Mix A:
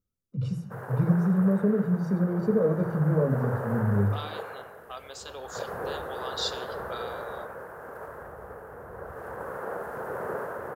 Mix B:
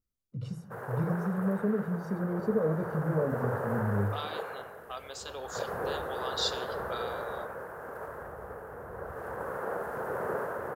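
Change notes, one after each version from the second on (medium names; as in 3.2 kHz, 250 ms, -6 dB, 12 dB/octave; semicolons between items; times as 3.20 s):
first voice: send -9.5 dB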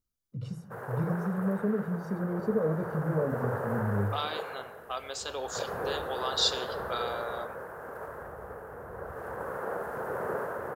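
second voice +5.0 dB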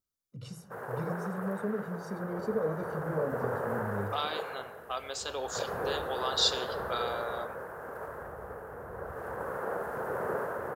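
first voice: add tilt EQ +2.5 dB/octave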